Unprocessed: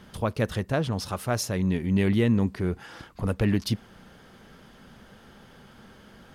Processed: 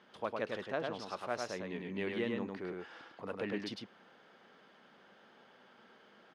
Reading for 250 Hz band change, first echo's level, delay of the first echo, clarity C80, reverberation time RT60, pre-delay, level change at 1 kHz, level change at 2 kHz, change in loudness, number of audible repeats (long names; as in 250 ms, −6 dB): −15.5 dB, −3.5 dB, 104 ms, no reverb audible, no reverb audible, no reverb audible, −7.0 dB, −7.0 dB, −13.0 dB, 1